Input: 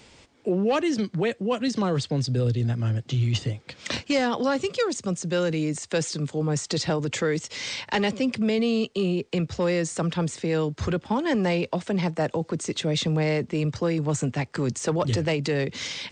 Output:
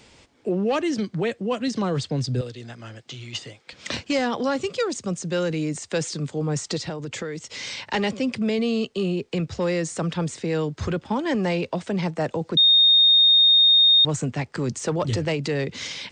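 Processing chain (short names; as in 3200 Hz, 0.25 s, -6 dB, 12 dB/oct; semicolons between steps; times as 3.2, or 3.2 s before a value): 2.41–3.73 HPF 830 Hz 6 dB/oct; 6.76–7.8 compressor 6:1, threshold -28 dBFS, peak gain reduction 8 dB; 12.57–14.05 bleep 3690 Hz -12 dBFS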